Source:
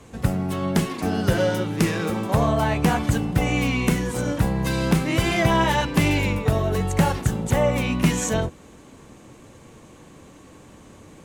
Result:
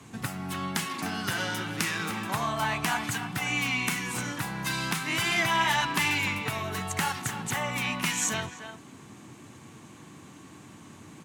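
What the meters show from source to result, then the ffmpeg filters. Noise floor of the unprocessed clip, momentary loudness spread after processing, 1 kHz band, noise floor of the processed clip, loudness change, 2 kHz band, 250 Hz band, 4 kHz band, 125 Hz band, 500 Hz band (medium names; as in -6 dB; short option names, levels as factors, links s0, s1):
-48 dBFS, 23 LU, -4.0 dB, -50 dBFS, -6.5 dB, 0.0 dB, -12.0 dB, 0.0 dB, -14.0 dB, -14.5 dB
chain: -filter_complex "[0:a]highpass=f=97:w=0.5412,highpass=f=97:w=1.3066,equalizer=f=520:w=2.5:g=-12.5,acrossover=split=820[s0][s1];[s0]acompressor=threshold=0.02:ratio=6[s2];[s2][s1]amix=inputs=2:normalize=0,asplit=2[s3][s4];[s4]adelay=300,highpass=300,lowpass=3400,asoftclip=type=hard:threshold=0.133,volume=0.355[s5];[s3][s5]amix=inputs=2:normalize=0"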